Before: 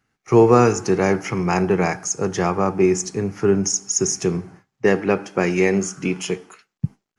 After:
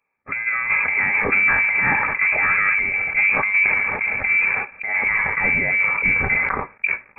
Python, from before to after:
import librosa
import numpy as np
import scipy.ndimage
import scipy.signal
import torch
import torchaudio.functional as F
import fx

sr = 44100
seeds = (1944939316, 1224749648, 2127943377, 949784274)

y = fx.over_compress(x, sr, threshold_db=-20.0, ratio=-0.5)
y = fx.leveller(y, sr, passes=2)
y = fx.notch_comb(y, sr, f0_hz=360.0)
y = fx.freq_invert(y, sr, carrier_hz=2500)
y = fx.sustainer(y, sr, db_per_s=26.0)
y = y * librosa.db_to_amplitude(-3.0)